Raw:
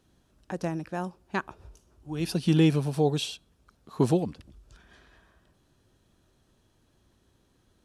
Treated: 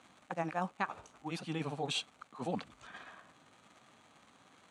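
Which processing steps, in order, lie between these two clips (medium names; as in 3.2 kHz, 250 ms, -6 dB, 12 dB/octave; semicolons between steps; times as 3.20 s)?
reverse; compression 6:1, threshold -37 dBFS, peak gain reduction 19 dB; reverse; crackle 230 per s -54 dBFS; granular stretch 0.6×, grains 116 ms; cabinet simulation 220–8400 Hz, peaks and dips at 370 Hz -10 dB, 780 Hz +6 dB, 1.2 kHz +8 dB, 2.2 kHz +5 dB, 5.2 kHz -10 dB; trim +7 dB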